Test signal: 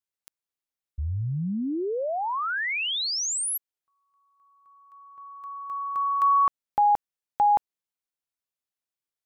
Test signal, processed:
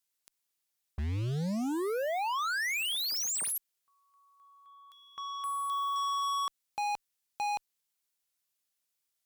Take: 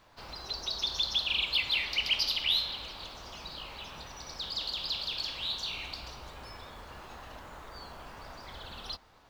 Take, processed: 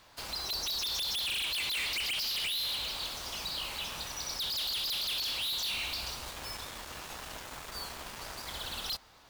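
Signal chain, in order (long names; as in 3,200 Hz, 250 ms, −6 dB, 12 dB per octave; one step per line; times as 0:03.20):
high-shelf EQ 2,500 Hz +10 dB
brickwall limiter −18 dBFS
hard clipping −34 dBFS
harmonic generator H 7 −11 dB, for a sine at −34 dBFS
level +1 dB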